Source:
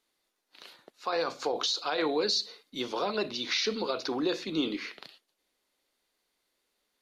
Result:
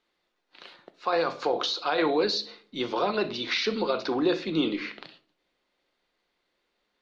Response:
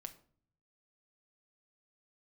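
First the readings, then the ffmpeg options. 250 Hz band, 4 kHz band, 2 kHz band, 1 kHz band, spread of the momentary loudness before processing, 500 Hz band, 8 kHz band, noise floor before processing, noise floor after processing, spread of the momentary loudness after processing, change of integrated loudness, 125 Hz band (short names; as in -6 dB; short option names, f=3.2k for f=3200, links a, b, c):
+4.5 dB, +0.5 dB, +4.0 dB, +5.0 dB, 10 LU, +4.5 dB, -5.5 dB, -79 dBFS, -78 dBFS, 9 LU, +3.0 dB, +6.5 dB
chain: -filter_complex "[0:a]lowpass=3.6k,asplit=2[a][b];[1:a]atrim=start_sample=2205[c];[b][c]afir=irnorm=-1:irlink=0,volume=9.5dB[d];[a][d]amix=inputs=2:normalize=0,volume=-4dB"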